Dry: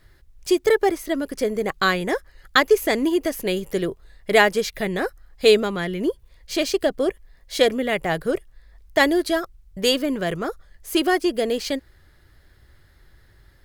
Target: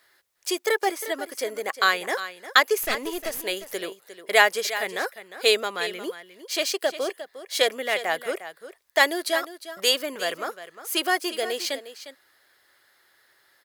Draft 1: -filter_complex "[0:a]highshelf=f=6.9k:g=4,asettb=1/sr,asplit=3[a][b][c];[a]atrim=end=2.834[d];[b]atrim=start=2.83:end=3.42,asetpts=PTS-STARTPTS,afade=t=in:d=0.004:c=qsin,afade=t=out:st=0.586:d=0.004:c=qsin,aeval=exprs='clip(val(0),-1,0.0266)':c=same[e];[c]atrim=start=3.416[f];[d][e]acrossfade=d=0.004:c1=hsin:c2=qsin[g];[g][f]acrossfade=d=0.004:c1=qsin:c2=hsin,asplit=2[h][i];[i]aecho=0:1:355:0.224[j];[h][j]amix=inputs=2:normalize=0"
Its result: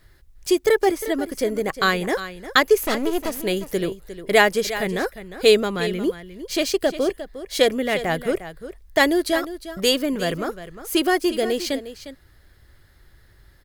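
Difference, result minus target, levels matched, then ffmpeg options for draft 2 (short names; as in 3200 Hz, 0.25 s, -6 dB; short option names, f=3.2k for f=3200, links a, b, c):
500 Hz band +3.0 dB
-filter_complex "[0:a]highpass=640,highshelf=f=6.9k:g=4,asettb=1/sr,asplit=3[a][b][c];[a]atrim=end=2.834[d];[b]atrim=start=2.83:end=3.42,asetpts=PTS-STARTPTS,afade=t=in:d=0.004:c=qsin,afade=t=out:st=0.586:d=0.004:c=qsin,aeval=exprs='clip(val(0),-1,0.0266)':c=same[e];[c]atrim=start=3.416[f];[d][e]acrossfade=d=0.004:c1=hsin:c2=qsin[g];[g][f]acrossfade=d=0.004:c1=qsin:c2=hsin,asplit=2[h][i];[i]aecho=0:1:355:0.224[j];[h][j]amix=inputs=2:normalize=0"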